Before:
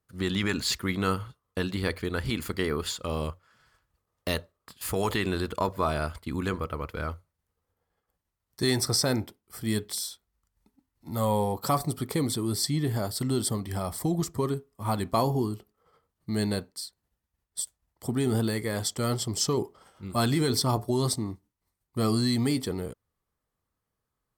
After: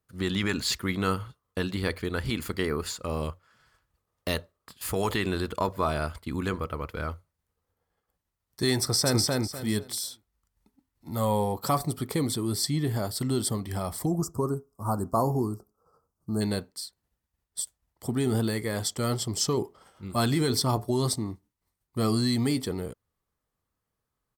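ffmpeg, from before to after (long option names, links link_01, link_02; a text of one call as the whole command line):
ffmpeg -i in.wav -filter_complex "[0:a]asettb=1/sr,asplit=3[link_01][link_02][link_03];[link_01]atrim=end=2.654[link_04];[link_02]atrim=start=2.65:end=3.23,asetpts=PTS-STARTPTS,afade=type=in:duration=0.004:curve=qsin,afade=type=out:start_time=0.576:duration=0.004:curve=qsin,equalizer=frequency=3300:width=4.6:gain=-10.5[link_05];[link_03]atrim=start=3.226[link_06];[link_04][link_05]acrossfade=duration=0.004:curve1=hsin:curve2=qsin[link_07];[link_07][link_06]acrossfade=duration=0.004:curve1=qsin:curve2=hsin,asplit=2[link_08][link_09];[link_09]afade=type=in:start_time=8.8:duration=0.01,afade=type=out:start_time=9.22:duration=0.01,aecho=0:1:250|500|750|1000:0.841395|0.210349|0.0525872|0.0131468[link_10];[link_08][link_10]amix=inputs=2:normalize=0,asplit=3[link_11][link_12][link_13];[link_11]afade=type=out:start_time=14.05:duration=0.02[link_14];[link_12]asuperstop=centerf=2700:order=12:qfactor=0.78,afade=type=in:start_time=14.05:duration=0.02,afade=type=out:start_time=16.4:duration=0.02[link_15];[link_13]afade=type=in:start_time=16.4:duration=0.02[link_16];[link_14][link_15][link_16]amix=inputs=3:normalize=0" out.wav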